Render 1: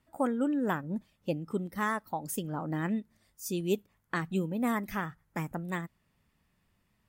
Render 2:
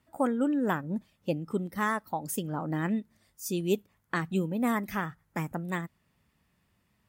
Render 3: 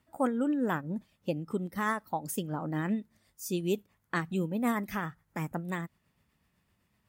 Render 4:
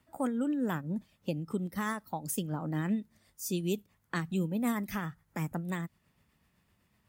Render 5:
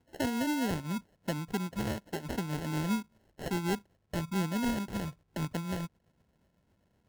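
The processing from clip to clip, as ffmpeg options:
-af "highpass=47,volume=2dB"
-af "tremolo=f=7.9:d=0.35"
-filter_complex "[0:a]acrossover=split=230|3000[a][b][c];[b]acompressor=threshold=-47dB:ratio=1.5[d];[a][d][c]amix=inputs=3:normalize=0,volume=2dB"
-af "acrusher=samples=37:mix=1:aa=0.000001"

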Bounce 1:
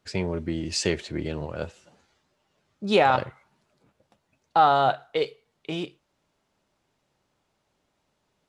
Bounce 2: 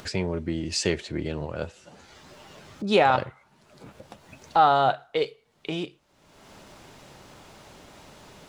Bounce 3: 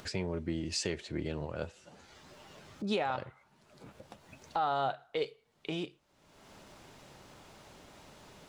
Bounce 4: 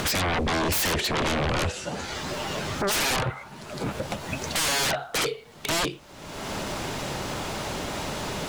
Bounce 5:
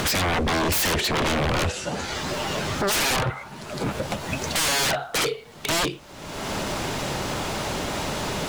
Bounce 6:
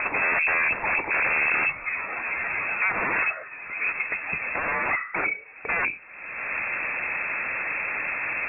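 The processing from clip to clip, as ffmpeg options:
-af "acompressor=mode=upward:threshold=-28dB:ratio=2.5"
-af "alimiter=limit=-16dB:level=0:latency=1:release=246,volume=-6dB"
-af "aeval=exprs='0.0841*sin(PI/2*10*val(0)/0.0841)':c=same"
-af "asoftclip=type=hard:threshold=-24dB,volume=3.5dB"
-af "lowpass=f=2.3k:t=q:w=0.5098,lowpass=f=2.3k:t=q:w=0.6013,lowpass=f=2.3k:t=q:w=0.9,lowpass=f=2.3k:t=q:w=2.563,afreqshift=-2700"

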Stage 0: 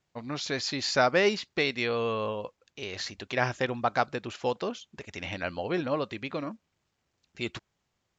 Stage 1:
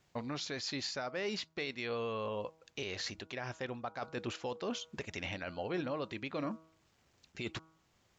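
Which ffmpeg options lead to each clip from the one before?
-af "areverse,acompressor=threshold=-35dB:ratio=6,areverse,bandreject=f=160.4:t=h:w=4,bandreject=f=320.8:t=h:w=4,bandreject=f=481.2:t=h:w=4,bandreject=f=641.6:t=h:w=4,bandreject=f=802:t=h:w=4,bandreject=f=962.4:t=h:w=4,bandreject=f=1.1228k:t=h:w=4,bandreject=f=1.2832k:t=h:w=4,bandreject=f=1.4436k:t=h:w=4,alimiter=level_in=11dB:limit=-24dB:level=0:latency=1:release=446,volume=-11dB,volume=7dB"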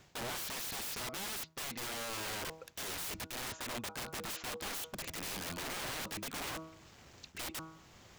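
-af "areverse,acompressor=threshold=-46dB:ratio=6,areverse,aeval=exprs='(mod(299*val(0)+1,2)-1)/299':c=same,volume=14dB"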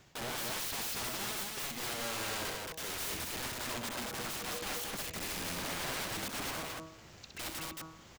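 -af "aecho=1:1:64.14|224.5:0.562|0.794"

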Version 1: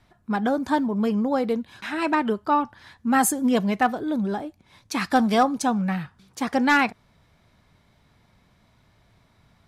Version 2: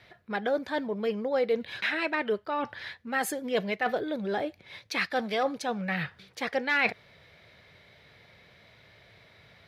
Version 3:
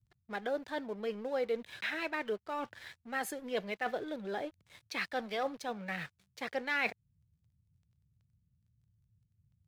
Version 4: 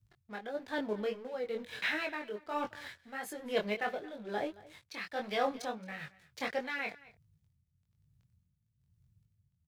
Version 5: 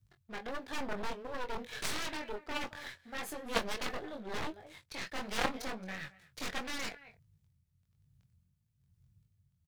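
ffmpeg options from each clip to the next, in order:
-af "highpass=86,areverse,acompressor=threshold=-31dB:ratio=5,areverse,equalizer=f=250:t=o:w=1:g=-8,equalizer=f=500:t=o:w=1:g=10,equalizer=f=1k:t=o:w=1:g=-6,equalizer=f=2k:t=o:w=1:g=10,equalizer=f=4k:t=o:w=1:g=7,equalizer=f=8k:t=o:w=1:g=-8,volume=2dB"
-filter_complex "[0:a]acrossover=split=160[a][b];[a]acompressor=threshold=-56dB:ratio=6[c];[b]aeval=exprs='sgn(val(0))*max(abs(val(0))-0.00398,0)':c=same[d];[c][d]amix=inputs=2:normalize=0,volume=-6.5dB"
-af "flanger=delay=19.5:depth=4.8:speed=1.5,tremolo=f=1.1:d=0.67,aecho=1:1:222:0.0944,volume=7dB"
-filter_complex "[0:a]aeval=exprs='0.133*(cos(1*acos(clip(val(0)/0.133,-1,1)))-cos(1*PI/2))+0.0237*(cos(6*acos(clip(val(0)/0.133,-1,1)))-cos(6*PI/2))+0.0299*(cos(7*acos(clip(val(0)/0.133,-1,1)))-cos(7*PI/2))':c=same,aeval=exprs='clip(val(0),-1,0.0126)':c=same,asplit=2[a][b];[b]adelay=22,volume=-12.5dB[c];[a][c]amix=inputs=2:normalize=0,volume=6dB"

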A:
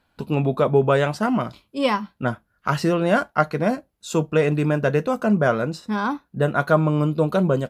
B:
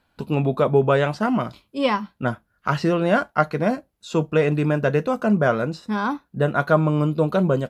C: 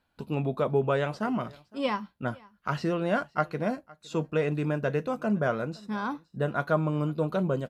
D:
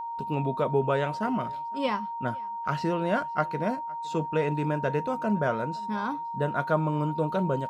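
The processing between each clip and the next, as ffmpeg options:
-filter_complex "[0:a]acrossover=split=5600[a][b];[b]acompressor=threshold=-52dB:ratio=4:attack=1:release=60[c];[a][c]amix=inputs=2:normalize=0"
-af "aecho=1:1:511:0.0631,volume=-8dB"
-af "aeval=exprs='val(0)+0.0251*sin(2*PI*930*n/s)':c=same"

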